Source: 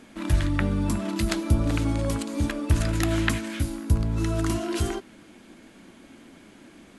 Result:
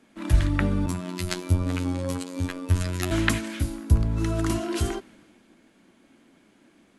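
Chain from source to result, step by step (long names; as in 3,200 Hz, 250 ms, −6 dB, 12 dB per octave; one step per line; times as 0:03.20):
0:00.86–0:03.11: phases set to zero 90.1 Hz
multiband upward and downward expander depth 40%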